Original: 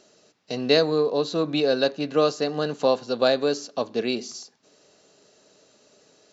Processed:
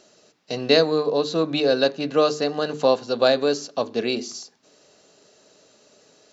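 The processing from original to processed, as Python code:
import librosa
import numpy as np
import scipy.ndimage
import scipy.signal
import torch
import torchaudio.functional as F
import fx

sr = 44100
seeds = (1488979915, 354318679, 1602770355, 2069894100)

y = fx.hum_notches(x, sr, base_hz=50, count=9)
y = F.gain(torch.from_numpy(y), 2.5).numpy()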